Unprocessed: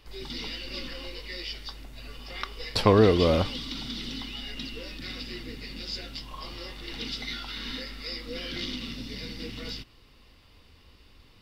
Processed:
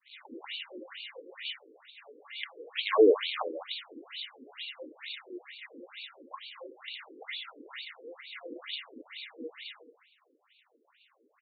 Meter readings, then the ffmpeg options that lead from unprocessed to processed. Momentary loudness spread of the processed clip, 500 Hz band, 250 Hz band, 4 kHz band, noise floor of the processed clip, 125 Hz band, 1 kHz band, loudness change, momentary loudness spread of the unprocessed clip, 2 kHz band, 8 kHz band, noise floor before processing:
17 LU, -2.0 dB, -8.5 dB, -5.5 dB, -71 dBFS, under -40 dB, -6.0 dB, -4.0 dB, 16 LU, -2.5 dB, under -30 dB, -56 dBFS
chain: -af "aecho=1:1:208:0.251,aresample=11025,acrusher=bits=3:mode=log:mix=0:aa=0.000001,aresample=44100,agate=range=0.0224:threshold=0.00282:ratio=3:detection=peak,afftfilt=real='re*between(b*sr/1024,360*pow(3200/360,0.5+0.5*sin(2*PI*2.2*pts/sr))/1.41,360*pow(3200/360,0.5+0.5*sin(2*PI*2.2*pts/sr))*1.41)':imag='im*between(b*sr/1024,360*pow(3200/360,0.5+0.5*sin(2*PI*2.2*pts/sr))/1.41,360*pow(3200/360,0.5+0.5*sin(2*PI*2.2*pts/sr))*1.41)':win_size=1024:overlap=0.75,volume=1.19"

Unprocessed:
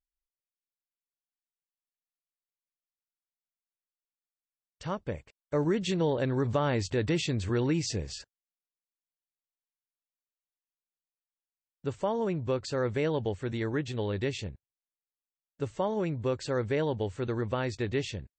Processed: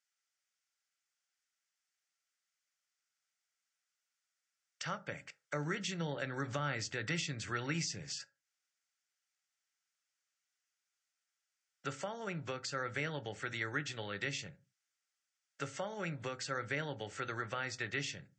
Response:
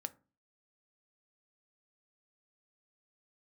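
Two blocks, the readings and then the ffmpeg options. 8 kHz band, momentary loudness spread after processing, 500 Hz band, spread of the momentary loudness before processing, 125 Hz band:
-1.0 dB, 7 LU, -13.0 dB, 10 LU, -10.5 dB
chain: -filter_complex "[0:a]lowshelf=f=440:t=q:w=1.5:g=-6.5,crystalizer=i=5.5:c=0,acrossover=split=240[s0][s1];[s1]acompressor=threshold=0.00708:ratio=3[s2];[s0][s2]amix=inputs=2:normalize=0,highpass=f=140:w=0.5412,highpass=f=140:w=1.3066,equalizer=f=220:t=q:w=4:g=-9,equalizer=f=510:t=q:w=4:g=-6,equalizer=f=980:t=q:w=4:g=-7,equalizer=f=1400:t=q:w=4:g=10,equalizer=f=2000:t=q:w=4:g=6,equalizer=f=4000:t=q:w=4:g=-6,lowpass=f=6600:w=0.5412,lowpass=f=6600:w=1.3066[s3];[1:a]atrim=start_sample=2205,afade=t=out:st=0.22:d=0.01,atrim=end_sample=10143[s4];[s3][s4]afir=irnorm=-1:irlink=0,volume=1.68"

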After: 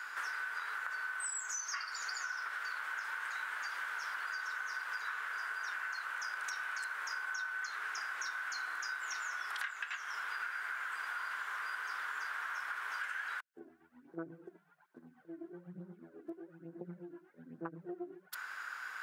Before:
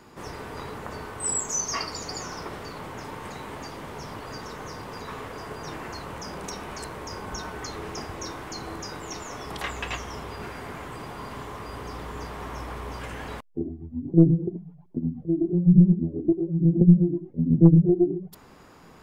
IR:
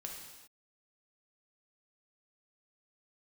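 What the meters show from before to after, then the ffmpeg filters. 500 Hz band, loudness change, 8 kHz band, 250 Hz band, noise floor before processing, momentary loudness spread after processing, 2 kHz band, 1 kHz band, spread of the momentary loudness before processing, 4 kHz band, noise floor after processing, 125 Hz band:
-22.5 dB, -14.5 dB, -11.5 dB, -28.5 dB, -51 dBFS, 12 LU, +5.0 dB, -5.0 dB, 19 LU, -8.0 dB, -65 dBFS, under -35 dB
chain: -af "highpass=f=1500:t=q:w=8.3,acompressor=threshold=0.0112:ratio=16,volume=1.33"

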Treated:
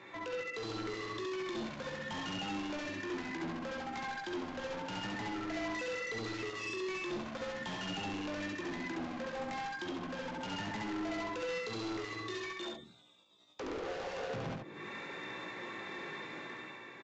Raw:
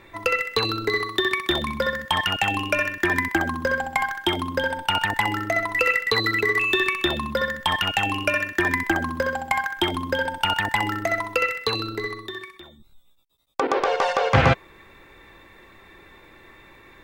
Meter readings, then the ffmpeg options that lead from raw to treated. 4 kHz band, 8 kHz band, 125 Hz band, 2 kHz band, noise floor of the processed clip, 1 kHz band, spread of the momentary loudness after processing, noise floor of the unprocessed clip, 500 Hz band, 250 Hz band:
-17.5 dB, -12.0 dB, -17.5 dB, -18.5 dB, -53 dBFS, -17.0 dB, 5 LU, -51 dBFS, -14.0 dB, -10.0 dB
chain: -filter_complex "[0:a]highpass=f=140:w=0.5412,highpass=f=140:w=1.3066,acrossover=split=470[s0][s1];[s1]acompressor=threshold=0.0126:ratio=6[s2];[s0][s2]amix=inputs=2:normalize=0,alimiter=limit=0.0794:level=0:latency=1:release=129,dynaudnorm=f=130:g=9:m=2.51,asoftclip=type=tanh:threshold=0.0376,flanger=delay=16:depth=3.9:speed=0.78,asoftclip=type=hard:threshold=0.0112,aecho=1:1:70:0.668,aresample=16000,aresample=44100"

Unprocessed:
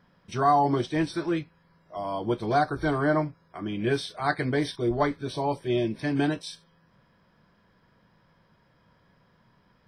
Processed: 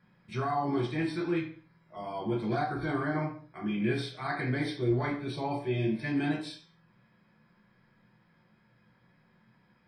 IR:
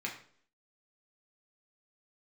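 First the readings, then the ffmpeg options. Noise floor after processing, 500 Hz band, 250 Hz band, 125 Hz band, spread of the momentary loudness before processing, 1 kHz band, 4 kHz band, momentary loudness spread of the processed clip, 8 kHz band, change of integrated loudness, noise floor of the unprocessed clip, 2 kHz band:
-67 dBFS, -6.5 dB, -3.0 dB, -2.0 dB, 12 LU, -8.5 dB, -5.5 dB, 9 LU, no reading, -5.0 dB, -64 dBFS, -4.0 dB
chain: -filter_complex "[0:a]alimiter=limit=0.119:level=0:latency=1:release=22[s0];[1:a]atrim=start_sample=2205,afade=t=out:st=0.32:d=0.01,atrim=end_sample=14553[s1];[s0][s1]afir=irnorm=-1:irlink=0,volume=0.596"

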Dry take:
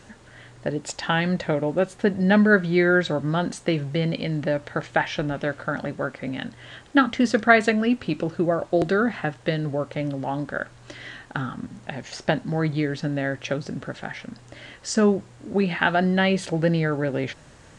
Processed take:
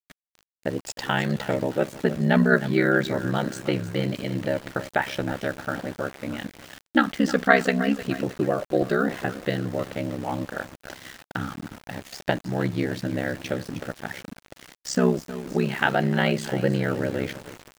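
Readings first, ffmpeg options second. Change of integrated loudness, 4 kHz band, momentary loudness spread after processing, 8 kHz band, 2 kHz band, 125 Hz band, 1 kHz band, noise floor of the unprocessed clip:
-2.0 dB, -2.0 dB, 15 LU, -1.0 dB, -2.0 dB, -1.5 dB, -1.5 dB, -50 dBFS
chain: -af "aecho=1:1:311|622|933|1244:0.2|0.0918|0.0422|0.0194,aeval=exprs='val(0)*gte(abs(val(0)),0.0158)':c=same,aeval=exprs='val(0)*sin(2*PI*33*n/s)':c=same,volume=1.12"

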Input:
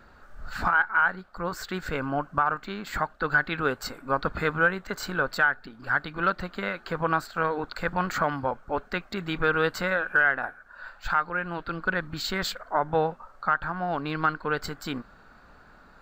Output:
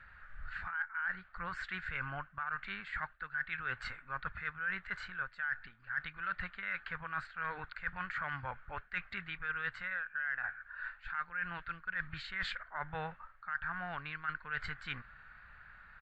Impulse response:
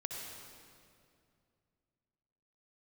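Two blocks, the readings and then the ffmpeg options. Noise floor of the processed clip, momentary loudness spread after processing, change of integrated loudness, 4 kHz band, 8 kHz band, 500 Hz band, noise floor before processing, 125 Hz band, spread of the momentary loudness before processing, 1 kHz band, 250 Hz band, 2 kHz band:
-61 dBFS, 7 LU, -12.0 dB, -12.0 dB, under -20 dB, -23.5 dB, -54 dBFS, -14.0 dB, 10 LU, -14.5 dB, -20.0 dB, -10.0 dB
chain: -af "firequalizer=gain_entry='entry(110,0);entry(270,-19);entry(1800,10);entry(5600,-18)':delay=0.05:min_phase=1,areverse,acompressor=threshold=0.0282:ratio=8,areverse,volume=0.668" -ar 22050 -c:a libmp3lame -b:a 56k

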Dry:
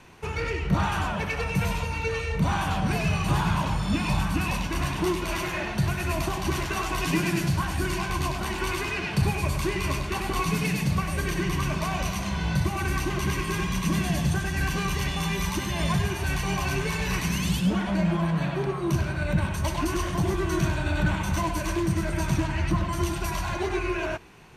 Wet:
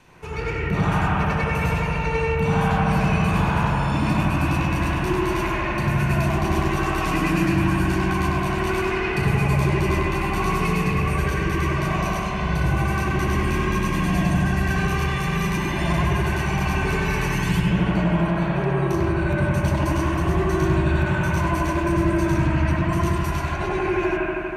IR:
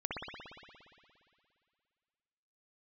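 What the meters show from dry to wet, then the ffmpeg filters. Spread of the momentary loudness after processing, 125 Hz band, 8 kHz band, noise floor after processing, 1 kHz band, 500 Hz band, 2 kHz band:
3 LU, +5.5 dB, -3.0 dB, -25 dBFS, +5.5 dB, +6.0 dB, +4.5 dB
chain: -filter_complex "[1:a]atrim=start_sample=2205,asetrate=32193,aresample=44100[s0];[0:a][s0]afir=irnorm=-1:irlink=0,volume=0.841"

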